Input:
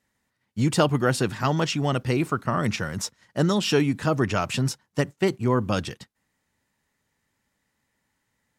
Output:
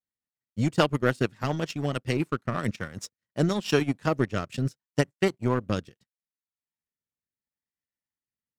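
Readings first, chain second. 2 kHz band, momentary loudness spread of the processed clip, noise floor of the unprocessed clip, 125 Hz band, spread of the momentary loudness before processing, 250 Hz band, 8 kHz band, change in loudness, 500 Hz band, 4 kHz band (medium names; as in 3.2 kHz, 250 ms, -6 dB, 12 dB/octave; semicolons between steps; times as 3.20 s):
-2.5 dB, 8 LU, -77 dBFS, -3.5 dB, 7 LU, -3.0 dB, -9.0 dB, -3.5 dB, -2.5 dB, -5.5 dB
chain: power-law waveshaper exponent 1.4; transient shaper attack +2 dB, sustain -10 dB; rotary cabinet horn 7 Hz, later 0.75 Hz, at 2.20 s; trim +2 dB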